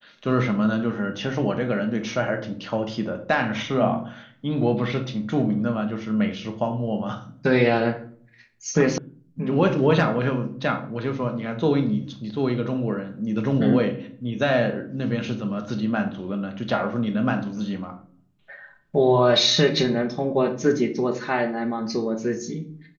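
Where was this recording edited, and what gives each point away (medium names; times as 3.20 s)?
8.98 s: sound stops dead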